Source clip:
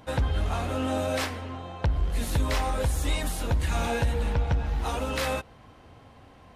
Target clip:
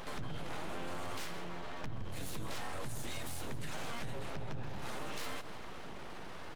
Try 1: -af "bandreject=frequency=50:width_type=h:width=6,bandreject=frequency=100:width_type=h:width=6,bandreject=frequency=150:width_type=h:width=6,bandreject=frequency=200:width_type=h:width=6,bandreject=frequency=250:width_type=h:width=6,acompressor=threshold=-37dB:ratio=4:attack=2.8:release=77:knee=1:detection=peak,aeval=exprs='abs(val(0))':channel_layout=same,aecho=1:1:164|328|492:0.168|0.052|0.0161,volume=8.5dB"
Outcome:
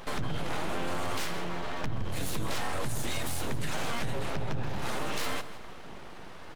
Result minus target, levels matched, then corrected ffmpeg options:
downward compressor: peak gain reduction −8.5 dB
-af "bandreject=frequency=50:width_type=h:width=6,bandreject=frequency=100:width_type=h:width=6,bandreject=frequency=150:width_type=h:width=6,bandreject=frequency=200:width_type=h:width=6,bandreject=frequency=250:width_type=h:width=6,acompressor=threshold=-48.5dB:ratio=4:attack=2.8:release=77:knee=1:detection=peak,aeval=exprs='abs(val(0))':channel_layout=same,aecho=1:1:164|328|492:0.168|0.052|0.0161,volume=8.5dB"

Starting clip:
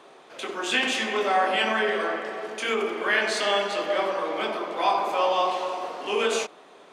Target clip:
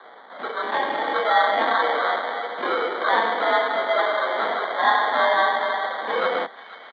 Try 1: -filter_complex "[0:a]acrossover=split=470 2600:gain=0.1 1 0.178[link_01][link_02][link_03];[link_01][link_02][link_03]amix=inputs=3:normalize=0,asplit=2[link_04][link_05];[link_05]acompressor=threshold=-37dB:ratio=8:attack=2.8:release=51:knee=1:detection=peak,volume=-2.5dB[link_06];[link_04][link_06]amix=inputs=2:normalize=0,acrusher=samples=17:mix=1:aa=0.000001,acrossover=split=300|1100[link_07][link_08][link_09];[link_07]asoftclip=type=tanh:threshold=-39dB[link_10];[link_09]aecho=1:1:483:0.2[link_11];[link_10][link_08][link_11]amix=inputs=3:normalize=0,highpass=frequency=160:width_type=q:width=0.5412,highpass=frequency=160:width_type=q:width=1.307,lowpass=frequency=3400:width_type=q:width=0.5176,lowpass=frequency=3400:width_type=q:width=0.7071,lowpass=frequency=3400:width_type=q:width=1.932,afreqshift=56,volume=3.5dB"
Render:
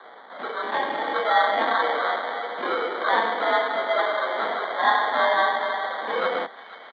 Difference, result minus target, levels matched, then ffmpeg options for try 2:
downward compressor: peak gain reduction +8 dB
-filter_complex "[0:a]acrossover=split=470 2600:gain=0.1 1 0.178[link_01][link_02][link_03];[link_01][link_02][link_03]amix=inputs=3:normalize=0,asplit=2[link_04][link_05];[link_05]acompressor=threshold=-28dB:ratio=8:attack=2.8:release=51:knee=1:detection=peak,volume=-2.5dB[link_06];[link_04][link_06]amix=inputs=2:normalize=0,acrusher=samples=17:mix=1:aa=0.000001,acrossover=split=300|1100[link_07][link_08][link_09];[link_07]asoftclip=type=tanh:threshold=-39dB[link_10];[link_09]aecho=1:1:483:0.2[link_11];[link_10][link_08][link_11]amix=inputs=3:normalize=0,highpass=frequency=160:width_type=q:width=0.5412,highpass=frequency=160:width_type=q:width=1.307,lowpass=frequency=3400:width_type=q:width=0.5176,lowpass=frequency=3400:width_type=q:width=0.7071,lowpass=frequency=3400:width_type=q:width=1.932,afreqshift=56,volume=3.5dB"

